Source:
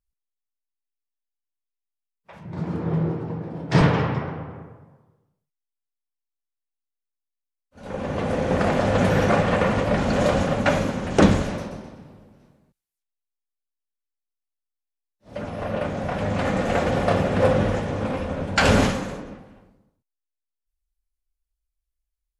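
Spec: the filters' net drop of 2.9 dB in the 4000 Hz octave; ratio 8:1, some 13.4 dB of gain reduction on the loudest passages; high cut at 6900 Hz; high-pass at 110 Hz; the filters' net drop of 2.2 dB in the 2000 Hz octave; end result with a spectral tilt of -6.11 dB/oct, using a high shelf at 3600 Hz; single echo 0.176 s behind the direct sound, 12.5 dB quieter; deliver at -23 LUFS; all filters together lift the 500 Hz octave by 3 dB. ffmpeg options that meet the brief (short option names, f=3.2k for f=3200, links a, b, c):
-af "highpass=110,lowpass=6.9k,equalizer=f=500:t=o:g=3.5,equalizer=f=2k:t=o:g=-3.5,highshelf=f=3.6k:g=6.5,equalizer=f=4k:t=o:g=-6.5,acompressor=threshold=-23dB:ratio=8,aecho=1:1:176:0.237,volume=5.5dB"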